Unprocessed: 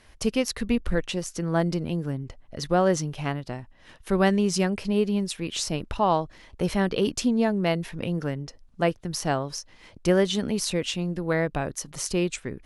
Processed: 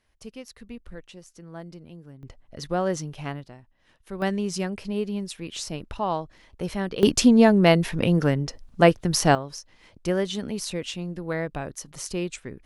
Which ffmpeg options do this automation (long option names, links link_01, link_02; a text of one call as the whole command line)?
ffmpeg -i in.wav -af "asetnsamples=nb_out_samples=441:pad=0,asendcmd='2.23 volume volume -4dB;3.47 volume volume -11.5dB;4.22 volume volume -4.5dB;7.03 volume volume 7.5dB;9.35 volume volume -4dB',volume=-16dB" out.wav